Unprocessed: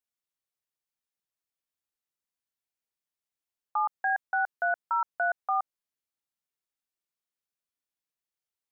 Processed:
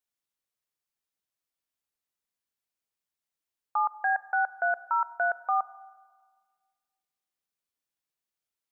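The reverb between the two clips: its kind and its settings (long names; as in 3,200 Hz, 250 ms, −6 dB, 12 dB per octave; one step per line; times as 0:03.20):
four-comb reverb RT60 1.6 s, combs from 31 ms, DRR 17.5 dB
level +1 dB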